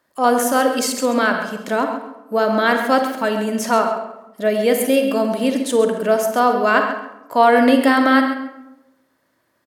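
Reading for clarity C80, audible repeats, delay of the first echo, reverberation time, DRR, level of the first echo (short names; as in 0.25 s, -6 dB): 7.0 dB, 1, 0.134 s, 0.95 s, 4.5 dB, -10.5 dB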